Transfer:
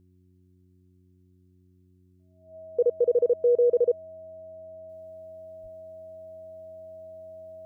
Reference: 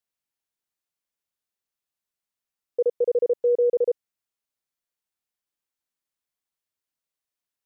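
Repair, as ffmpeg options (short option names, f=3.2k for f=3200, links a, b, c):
-filter_complex "[0:a]bandreject=f=91.4:t=h:w=4,bandreject=f=182.8:t=h:w=4,bandreject=f=274.2:t=h:w=4,bandreject=f=365.6:t=h:w=4,bandreject=f=640:w=30,asplit=3[a][b][c];[a]afade=t=out:st=5.62:d=0.02[d];[b]highpass=f=140:w=0.5412,highpass=f=140:w=1.3066,afade=t=in:st=5.62:d=0.02,afade=t=out:st=5.74:d=0.02[e];[c]afade=t=in:st=5.74:d=0.02[f];[d][e][f]amix=inputs=3:normalize=0,asetnsamples=n=441:p=0,asendcmd='4.89 volume volume -7.5dB',volume=0dB"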